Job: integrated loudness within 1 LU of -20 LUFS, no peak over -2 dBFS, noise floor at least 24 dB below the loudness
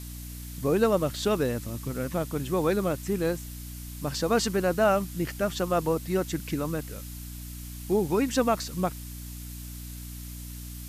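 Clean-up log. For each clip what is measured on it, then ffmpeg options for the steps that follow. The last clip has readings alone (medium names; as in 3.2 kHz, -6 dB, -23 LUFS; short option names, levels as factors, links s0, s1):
hum 60 Hz; highest harmonic 300 Hz; hum level -37 dBFS; noise floor -40 dBFS; noise floor target -52 dBFS; loudness -27.5 LUFS; peak level -10.5 dBFS; loudness target -20.0 LUFS
-> -af "bandreject=f=60:t=h:w=6,bandreject=f=120:t=h:w=6,bandreject=f=180:t=h:w=6,bandreject=f=240:t=h:w=6,bandreject=f=300:t=h:w=6"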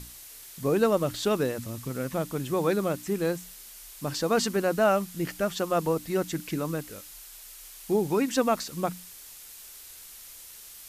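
hum not found; noise floor -47 dBFS; noise floor target -52 dBFS
-> -af "afftdn=nr=6:nf=-47"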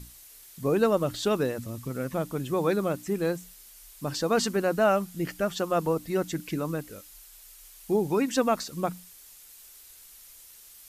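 noise floor -51 dBFS; noise floor target -52 dBFS
-> -af "afftdn=nr=6:nf=-51"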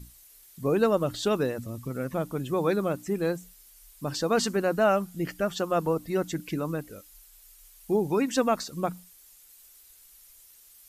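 noise floor -55 dBFS; loudness -28.0 LUFS; peak level -11.0 dBFS; loudness target -20.0 LUFS
-> -af "volume=2.51"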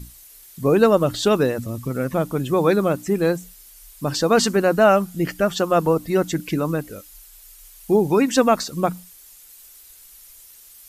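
loudness -20.0 LUFS; peak level -3.0 dBFS; noise floor -47 dBFS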